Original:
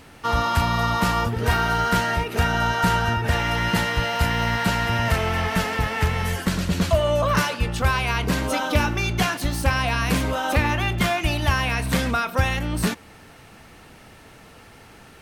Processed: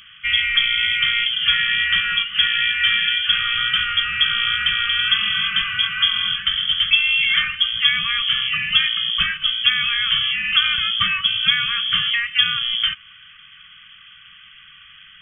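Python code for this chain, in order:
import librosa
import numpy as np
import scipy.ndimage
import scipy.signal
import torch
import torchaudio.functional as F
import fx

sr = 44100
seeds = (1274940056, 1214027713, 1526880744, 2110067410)

y = fx.wow_flutter(x, sr, seeds[0], rate_hz=2.1, depth_cents=21.0)
y = fx.freq_invert(y, sr, carrier_hz=3300)
y = fx.brickwall_bandstop(y, sr, low_hz=210.0, high_hz=1100.0)
y = F.gain(torch.from_numpy(y), 2.0).numpy()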